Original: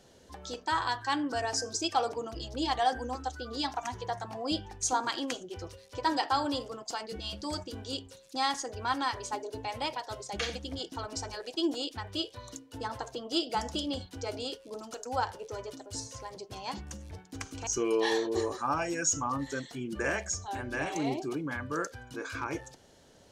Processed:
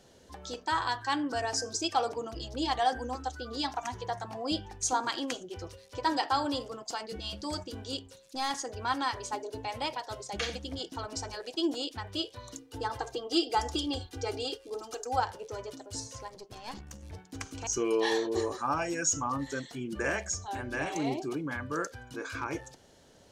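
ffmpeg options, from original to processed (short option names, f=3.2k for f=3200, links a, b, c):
-filter_complex "[0:a]asettb=1/sr,asplit=3[a][b][c];[a]atrim=end=7.974[d];[b]atrim=start=7.97:end=8.51,asetpts=PTS-STARTPTS,afade=t=in:d=0.004:c=qsin,afade=t=out:st=0.536:d=0.004:c=qsin,aeval=exprs='(tanh(17.8*val(0)+0.4)-tanh(0.4))/17.8':c=same[e];[c]atrim=start=8.506[f];[d][e]acrossfade=d=0.004:c1=hsin:c2=qsin[g];[g][f]acrossfade=d=0.004:c1=qsin:c2=hsin,asettb=1/sr,asplit=3[h][i][j];[h]atrim=end=12.584[k];[i]atrim=start=12.58:end=15.2,asetpts=PTS-STARTPTS,afade=t=in:d=0.004:c=qsin,afade=t=out:st=2.616:d=0.004:c=qsin,aecho=1:1:2.5:0.77,atrim=end_sample=115542[l];[j]atrim=start=15.196[m];[k][l]acrossfade=d=0.004:c1=hsin:c2=qsin[n];[n][m]acrossfade=d=0.004:c1=qsin:c2=hsin,asettb=1/sr,asplit=3[o][p][q];[o]atrim=end=16.284[r];[p]atrim=start=16.28:end=17.03,asetpts=PTS-STARTPTS,afade=t=in:d=0.004:c=qsin,afade=t=out:st=0.746:d=0.004:c=qsin,aeval=exprs='(tanh(50.1*val(0)+0.75)-tanh(0.75))/50.1':c=same[s];[q]atrim=start=17.026[t];[r][s]acrossfade=d=0.004:c1=hsin:c2=qsin[u];[u][t]acrossfade=d=0.004:c1=qsin:c2=hsin"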